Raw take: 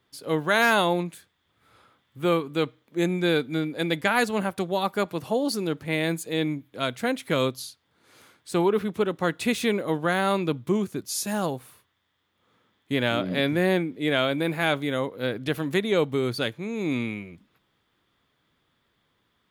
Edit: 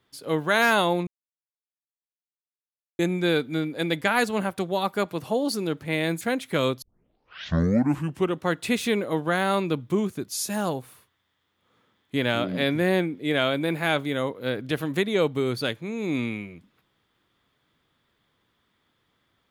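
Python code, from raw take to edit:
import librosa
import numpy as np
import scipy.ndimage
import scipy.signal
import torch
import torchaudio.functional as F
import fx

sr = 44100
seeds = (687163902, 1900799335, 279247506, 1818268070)

y = fx.edit(x, sr, fx.silence(start_s=1.07, length_s=1.92),
    fx.cut(start_s=6.21, length_s=0.77),
    fx.tape_start(start_s=7.59, length_s=1.6), tone=tone)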